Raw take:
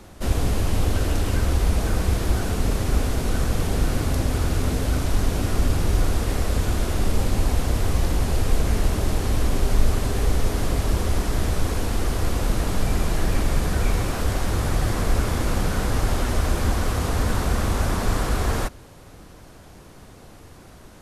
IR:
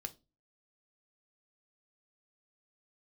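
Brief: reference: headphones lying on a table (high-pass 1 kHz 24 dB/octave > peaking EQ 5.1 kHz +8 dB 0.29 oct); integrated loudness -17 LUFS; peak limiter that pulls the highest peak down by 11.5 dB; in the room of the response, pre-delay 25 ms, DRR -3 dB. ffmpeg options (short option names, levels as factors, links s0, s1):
-filter_complex "[0:a]alimiter=limit=0.141:level=0:latency=1,asplit=2[s0][s1];[1:a]atrim=start_sample=2205,adelay=25[s2];[s1][s2]afir=irnorm=-1:irlink=0,volume=2[s3];[s0][s3]amix=inputs=2:normalize=0,highpass=f=1000:w=0.5412,highpass=f=1000:w=1.3066,equalizer=f=5100:t=o:w=0.29:g=8,volume=4.47"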